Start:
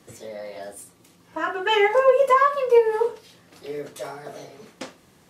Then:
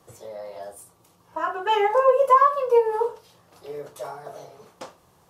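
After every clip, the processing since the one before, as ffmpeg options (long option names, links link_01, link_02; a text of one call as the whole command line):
ffmpeg -i in.wav -af "equalizer=frequency=250:width_type=o:width=1:gain=-11,equalizer=frequency=1000:width_type=o:width=1:gain=5,equalizer=frequency=2000:width_type=o:width=1:gain=-9,equalizer=frequency=4000:width_type=o:width=1:gain=-4,equalizer=frequency=8000:width_type=o:width=1:gain=-4" out.wav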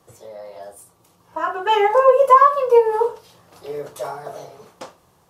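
ffmpeg -i in.wav -af "dynaudnorm=framelen=290:gausssize=9:maxgain=11.5dB" out.wav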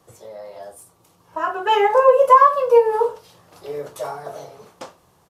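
ffmpeg -i in.wav -af "aresample=32000,aresample=44100" out.wav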